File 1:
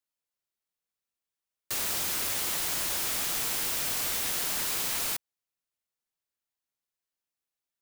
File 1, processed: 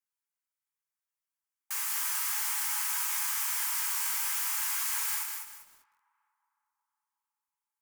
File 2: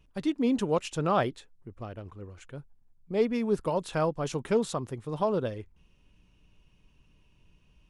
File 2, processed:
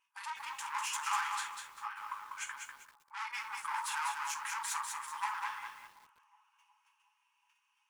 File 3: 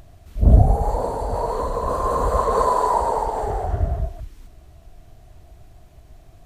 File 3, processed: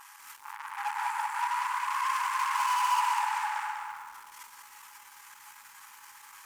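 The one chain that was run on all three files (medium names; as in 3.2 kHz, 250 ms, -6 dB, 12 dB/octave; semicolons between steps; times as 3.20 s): in parallel at -1.5 dB: compression 12:1, threshold -34 dBFS; on the sum: gate -50 dBFS, range -16 dB; gated-style reverb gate 100 ms falling, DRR -1 dB; valve stage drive 27 dB, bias 0.55; peak limiter -33 dBFS; brick-wall FIR high-pass 810 Hz; peaking EQ 3.8 kHz -9.5 dB 0.8 oct; filtered feedback delay 366 ms, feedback 71%, low-pass 1.3 kHz, level -19.5 dB; bit-crushed delay 196 ms, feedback 35%, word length 11-bit, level -4.5 dB; trim +8.5 dB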